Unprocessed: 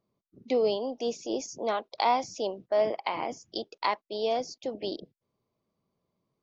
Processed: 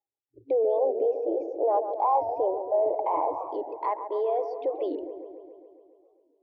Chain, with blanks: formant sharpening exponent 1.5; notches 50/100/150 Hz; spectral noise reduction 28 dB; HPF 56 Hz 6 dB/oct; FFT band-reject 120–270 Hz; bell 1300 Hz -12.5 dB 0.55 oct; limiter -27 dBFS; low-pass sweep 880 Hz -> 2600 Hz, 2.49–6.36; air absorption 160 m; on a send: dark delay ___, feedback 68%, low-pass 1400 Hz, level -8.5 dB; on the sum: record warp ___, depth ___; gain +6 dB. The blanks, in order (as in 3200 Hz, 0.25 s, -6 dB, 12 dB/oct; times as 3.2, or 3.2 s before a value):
0.138 s, 45 rpm, 160 cents